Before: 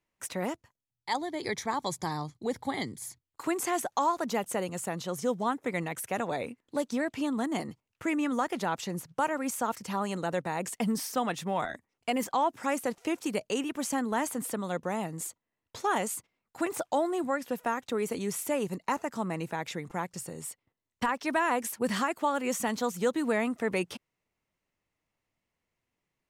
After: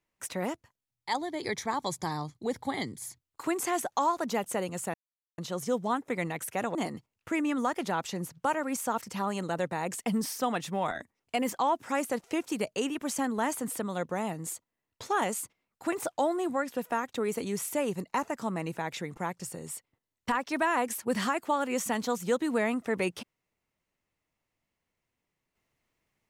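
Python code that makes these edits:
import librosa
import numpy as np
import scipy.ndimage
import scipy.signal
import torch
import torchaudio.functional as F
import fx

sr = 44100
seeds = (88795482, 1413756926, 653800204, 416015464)

y = fx.edit(x, sr, fx.insert_silence(at_s=4.94, length_s=0.44),
    fx.cut(start_s=6.31, length_s=1.18), tone=tone)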